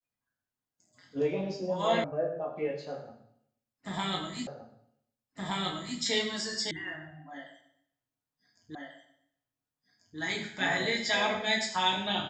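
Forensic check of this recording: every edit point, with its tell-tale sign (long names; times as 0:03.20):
0:02.04: cut off before it has died away
0:04.47: the same again, the last 1.52 s
0:06.71: cut off before it has died away
0:08.75: the same again, the last 1.44 s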